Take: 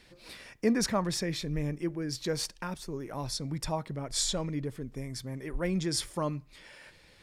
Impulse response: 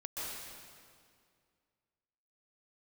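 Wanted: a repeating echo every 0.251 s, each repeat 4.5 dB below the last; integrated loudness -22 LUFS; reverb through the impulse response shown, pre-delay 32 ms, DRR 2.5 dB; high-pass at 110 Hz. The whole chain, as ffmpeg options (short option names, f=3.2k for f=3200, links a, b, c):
-filter_complex "[0:a]highpass=110,aecho=1:1:251|502|753|1004|1255|1506|1757|2008|2259:0.596|0.357|0.214|0.129|0.0772|0.0463|0.0278|0.0167|0.01,asplit=2[a][b];[1:a]atrim=start_sample=2205,adelay=32[c];[b][c]afir=irnorm=-1:irlink=0,volume=-4.5dB[d];[a][d]amix=inputs=2:normalize=0,volume=7.5dB"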